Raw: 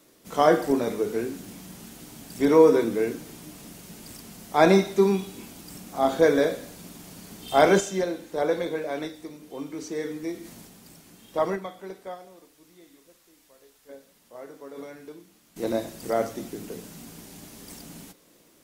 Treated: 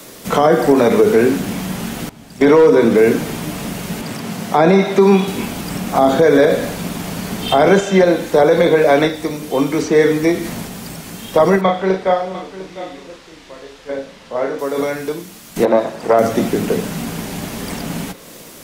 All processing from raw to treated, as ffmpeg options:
-filter_complex "[0:a]asettb=1/sr,asplit=3[s0][s1][s2];[s0]atrim=end=2.094[s3];[s1]atrim=start=2.09:end=2.98,asetpts=PTS-STARTPTS,afade=t=in:d=0.004:c=qsin,afade=t=out:st=0.886:d=0.004:c=qsin,lowpass=f=3300:p=1,agate=range=0.178:threshold=0.0251:ratio=16:release=100:detection=peak,asoftclip=type=hard:threshold=0.299[s4];[s2]atrim=start=2.976[s5];[s3][s4]acrossfade=d=0.004:c1=hsin:c2=qsin[s6];[s6][s5]acrossfade=d=0.004:c1=qsin:c2=hsin,asettb=1/sr,asplit=3[s7][s8][s9];[s7]atrim=end=4.014[s10];[s8]atrim=start=4.01:end=5.28,asetpts=PTS-STARTPTS,afade=t=in:d=0.004:c=qsin,afade=t=out:st=1.266:d=0.004:c=qsin,highpass=f=110:w=0.5412,highpass=f=110:w=1.3066,highshelf=f=5200:g=-9[s11];[s9]atrim=start=5.276[s12];[s10][s11]acrossfade=d=0.004:c1=hsin:c2=qsin[s13];[s13][s12]acrossfade=d=0.004:c1=qsin:c2=hsin,asettb=1/sr,asplit=3[s14][s15][s16];[s14]atrim=end=11.614[s17];[s15]atrim=start=11.61:end=14.59,asetpts=PTS-STARTPTS,afade=t=in:d=0.004:c=qsin,afade=t=out:st=2.976:d=0.004:c=qsin,lowpass=3900,asplit=2[s18][s19];[s19]adelay=37,volume=0.631[s20];[s18][s20]amix=inputs=2:normalize=0,atrim=end_sample=131418,aecho=1:1:701:0.168,atrim=end_sample=131418[s21];[s16]atrim=start=14.586[s22];[s17][s21]acrossfade=d=0.004:c1=hsin:c2=qsin[s23];[s23][s22]acrossfade=d=0.004:c1=qsin:c2=hsin,asettb=1/sr,asplit=3[s24][s25][s26];[s24]atrim=end=15.654[s27];[s25]atrim=start=15.65:end=16.19,asetpts=PTS-STARTPTS,afade=t=in:d=0.004:c=qsin,afade=t=out:st=0.536:d=0.004:c=qsin,aeval=exprs='if(lt(val(0),0),0.447*val(0),val(0))':c=same,bandpass=f=760:t=q:w=0.66[s28];[s26]atrim=start=16.186[s29];[s27][s28]acrossfade=d=0.004:c1=hsin:c2=qsin[s30];[s30][s29]acrossfade=d=0.004:c1=qsin:c2=hsin,equalizer=f=320:w=3.2:g=-6,acrossover=split=130|420|3300[s31][s32][s33][s34];[s31]acompressor=threshold=0.00158:ratio=4[s35];[s32]acompressor=threshold=0.0251:ratio=4[s36];[s33]acompressor=threshold=0.0251:ratio=4[s37];[s34]acompressor=threshold=0.00141:ratio=4[s38];[s35][s36][s37][s38]amix=inputs=4:normalize=0,alimiter=level_in=15:limit=0.891:release=50:level=0:latency=1,volume=0.841"

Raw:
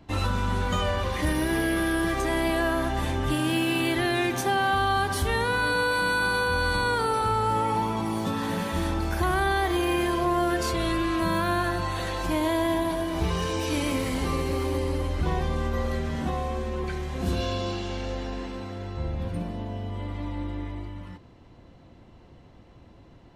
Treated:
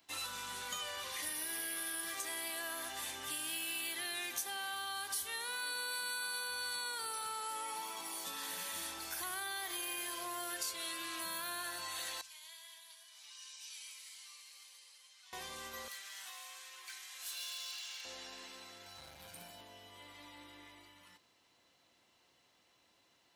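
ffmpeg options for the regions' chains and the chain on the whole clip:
-filter_complex "[0:a]asettb=1/sr,asplit=3[s0][s1][s2];[s0]atrim=end=12.214[s3];[s1]atrim=start=12.21:end=15.33,asetpts=PTS-STARTPTS,afade=t=in:d=0.004:c=qsin,afade=t=out:st=3.116:d=0.004:c=qsin,highpass=670,lowpass=5000,aderivative,flanger=delay=3.7:depth=3.1:regen=67:speed=2:shape=triangular[s4];[s2]atrim=start=15.326[s5];[s3][s4]acrossfade=d=0.004:c1=hsin:c2=qsin[s6];[s6][s5]acrossfade=d=0.004:c1=qsin:c2=hsin,asettb=1/sr,asplit=3[s7][s8][s9];[s7]atrim=end=15.884[s10];[s8]atrim=start=15.88:end=18.05,asetpts=PTS-STARTPTS,afade=t=in:d=0.004:c=qsin,afade=t=out:st=2.166:d=0.004:c=qsin,highpass=1300,volume=59.6,asoftclip=hard,volume=0.0168[s11];[s9]atrim=start=18.046[s12];[s10][s11]acrossfade=d=0.004:c1=hsin:c2=qsin[s13];[s13][s12]acrossfade=d=0.004:c1=qsin:c2=hsin,asettb=1/sr,asplit=3[s14][s15][s16];[s14]atrim=end=18.864[s17];[s15]atrim=start=18.86:end=19.61,asetpts=PTS-STARTPTS,afade=t=in:d=0.004:c=qsin,afade=t=out:st=0.746:d=0.004:c=qsin,highshelf=f=11000:g=10.5,aecho=1:1:1.3:0.56,atrim=end_sample=33075,asoftclip=type=hard:threshold=0.0562[s18];[s16]atrim=start=19.606[s19];[s17][s18]acrossfade=d=0.004:c1=hsin:c2=qsin[s20];[s20][s19]acrossfade=d=0.004:c1=qsin:c2=hsin,aderivative,bandreject=f=54.86:t=h:w=4,bandreject=f=109.72:t=h:w=4,bandreject=f=164.58:t=h:w=4,bandreject=f=219.44:t=h:w=4,acompressor=threshold=0.00891:ratio=2.5,volume=1.33"

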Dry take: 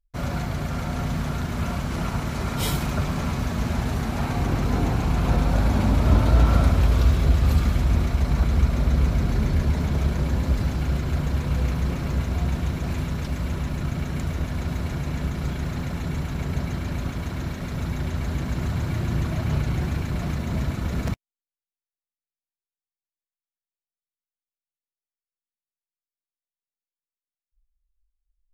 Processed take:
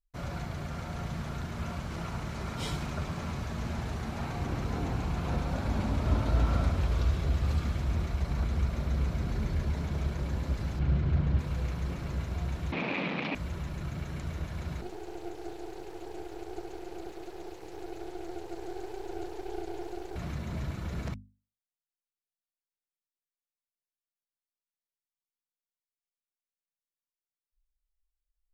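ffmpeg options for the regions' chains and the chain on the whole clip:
-filter_complex "[0:a]asettb=1/sr,asplit=3[s0][s1][s2];[s0]atrim=end=10.794[s3];[s1]atrim=start=10.79:end=11.39,asetpts=PTS-STARTPTS,afade=t=in:d=0.004:c=qsin,afade=t=out:st=0.596:d=0.004:c=qsin,lowpass=3800,equalizer=f=120:w=0.5:g=8.5[s4];[s2]atrim=start=11.386[s5];[s3][s4]acrossfade=d=0.004:c1=hsin:c2=qsin[s6];[s6][s5]acrossfade=d=0.004:c1=qsin:c2=hsin,asettb=1/sr,asplit=3[s7][s8][s9];[s7]atrim=end=12.724[s10];[s8]atrim=start=12.72:end=13.35,asetpts=PTS-STARTPTS,afade=t=in:d=0.004:c=qsin,afade=t=out:st=0.626:d=0.004:c=qsin,aeval=exprs='0.168*sin(PI/2*3.16*val(0)/0.168)':c=same,highpass=f=190:w=0.5412,highpass=f=190:w=1.3066,equalizer=f=390:t=q:w=4:g=-7,equalizer=f=1500:t=q:w=4:g=-5,equalizer=f=2400:t=q:w=4:g=10,lowpass=f=3800:w=0.5412,lowpass=f=3800:w=1.3066[s11];[s9]atrim=start=13.346[s12];[s10][s11]acrossfade=d=0.004:c1=hsin:c2=qsin[s13];[s13][s12]acrossfade=d=0.004:c1=qsin:c2=hsin,asettb=1/sr,asplit=3[s14][s15][s16];[s14]atrim=end=14.814[s17];[s15]atrim=start=14.81:end=20.16,asetpts=PTS-STARTPTS,afade=t=in:d=0.004:c=qsin,afade=t=out:st=5.346:d=0.004:c=qsin,acrossover=split=150|3000[s18][s19][s20];[s19]acompressor=threshold=0.00891:ratio=3:attack=3.2:release=140:knee=2.83:detection=peak[s21];[s18][s21][s20]amix=inputs=3:normalize=0,afreqshift=280,aeval=exprs='max(val(0),0)':c=same[s22];[s16]atrim=start=20.156[s23];[s17][s22]acrossfade=d=0.004:c1=hsin:c2=qsin[s24];[s24][s23]acrossfade=d=0.004:c1=qsin:c2=hsin,acrossover=split=8400[s25][s26];[s26]acompressor=threshold=0.00141:ratio=4:attack=1:release=60[s27];[s25][s27]amix=inputs=2:normalize=0,bandreject=f=50:t=h:w=6,bandreject=f=100:t=h:w=6,bandreject=f=150:t=h:w=6,bandreject=f=200:t=h:w=6,bandreject=f=250:t=h:w=6,volume=0.376"

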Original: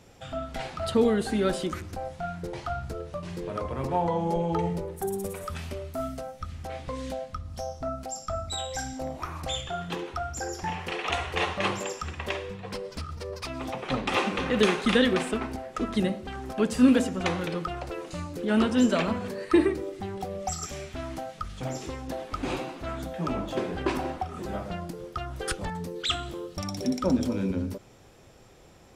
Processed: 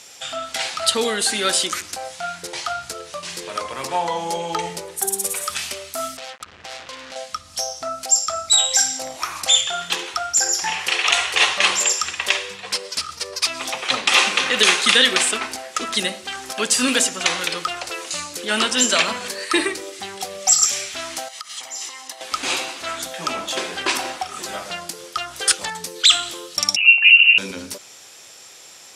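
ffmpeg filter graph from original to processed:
-filter_complex "[0:a]asettb=1/sr,asplit=3[s0][s1][s2];[s0]atrim=end=6.174[s3];[s1]atrim=start=6.17:end=7.16,asetpts=PTS-STARTPTS,afade=t=in:d=0.004:c=qsin,afade=t=out:st=0.986:d=0.004:c=qsin,lowpass=1700,acompressor=threshold=0.0141:ratio=6:attack=3.2:release=140:knee=1:detection=peak,acrusher=bits=6:mix=0:aa=0.5[s4];[s2]atrim=start=7.156[s5];[s3][s4]acrossfade=d=0.004:c1=hsin:c2=qsin[s6];[s6][s5]acrossfade=d=0.004:c1=qsin:c2=hsin,asettb=1/sr,asplit=3[s7][s8][s9];[s7]atrim=end=21.284[s10];[s8]atrim=start=21.28:end=22.21,asetpts=PTS-STARTPTS,afade=t=in:d=0.004:c=qsin,afade=t=out:st=0.926:d=0.004:c=qsin,highpass=430,acompressor=threshold=0.00631:ratio=4:attack=3.2:release=140:knee=1:detection=peak,aecho=1:1:1:0.49,atrim=end_sample=41013[s11];[s9]atrim=start=22.206[s12];[s10][s11]acrossfade=d=0.004:c1=hsin:c2=qsin[s13];[s13][s12]acrossfade=d=0.004:c1=qsin:c2=hsin,asettb=1/sr,asplit=3[s14][s15][s16];[s14]atrim=end=26.764[s17];[s15]atrim=start=26.76:end=27.38,asetpts=PTS-STARTPTS,afade=t=in:d=0.004:c=qsin,afade=t=out:st=0.616:d=0.004:c=qsin,equalizer=f=1300:t=o:w=0.57:g=-11.5,lowpass=f=2600:t=q:w=0.5098,lowpass=f=2600:t=q:w=0.6013,lowpass=f=2600:t=q:w=0.9,lowpass=f=2600:t=q:w=2.563,afreqshift=-3000[s18];[s16]atrim=start=27.376[s19];[s17][s18]acrossfade=d=0.004:c1=hsin:c2=qsin[s20];[s20][s19]acrossfade=d=0.004:c1=qsin:c2=hsin,lowpass=8500,aderivative,alimiter=level_in=17.8:limit=0.891:release=50:level=0:latency=1,volume=0.891"

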